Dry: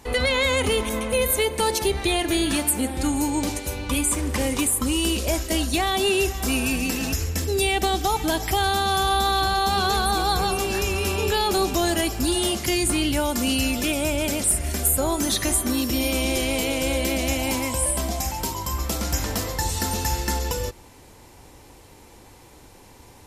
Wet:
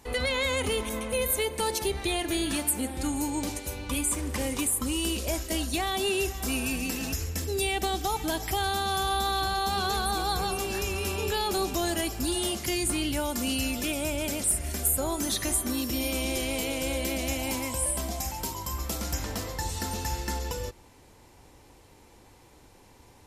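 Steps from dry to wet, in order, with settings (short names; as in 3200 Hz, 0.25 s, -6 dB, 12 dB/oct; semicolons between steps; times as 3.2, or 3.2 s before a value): high shelf 7900 Hz +3 dB, from 19.14 s -3.5 dB; gain -6.5 dB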